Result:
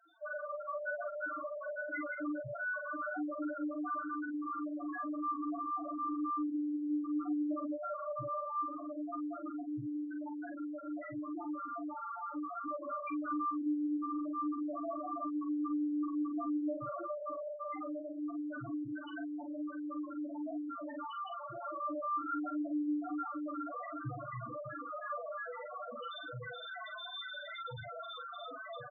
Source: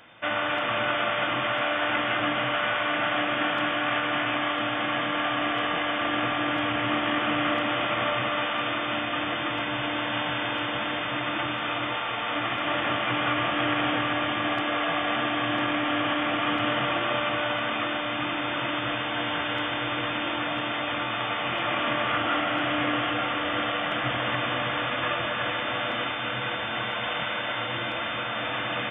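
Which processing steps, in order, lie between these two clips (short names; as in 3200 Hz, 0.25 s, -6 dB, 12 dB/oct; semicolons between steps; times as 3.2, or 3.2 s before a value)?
loudest bins only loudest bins 1; doubler 43 ms -6.5 dB; gain +1 dB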